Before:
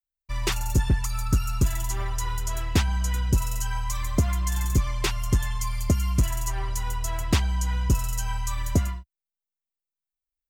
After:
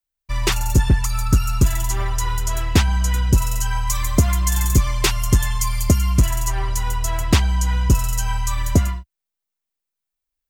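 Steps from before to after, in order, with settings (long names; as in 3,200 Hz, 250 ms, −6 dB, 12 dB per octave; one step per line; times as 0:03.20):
0:03.87–0:05.98: high-shelf EQ 5,400 Hz +5.5 dB
level +6.5 dB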